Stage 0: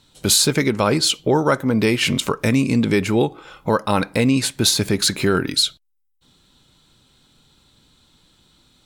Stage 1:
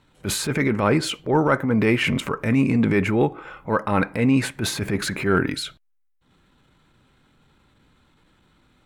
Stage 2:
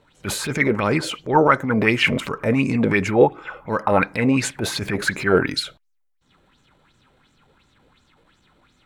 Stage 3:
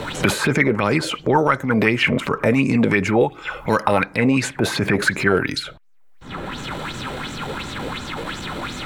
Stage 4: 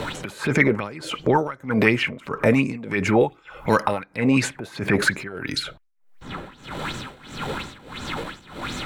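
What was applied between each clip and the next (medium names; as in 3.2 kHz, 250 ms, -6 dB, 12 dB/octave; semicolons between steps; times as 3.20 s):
resonant high shelf 2.9 kHz -11 dB, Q 1.5; transient shaper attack -10 dB, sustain +2 dB
sweeping bell 2.8 Hz 480–7000 Hz +14 dB; trim -1.5 dB
three bands compressed up and down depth 100%; trim +1 dB
tremolo 1.6 Hz, depth 90%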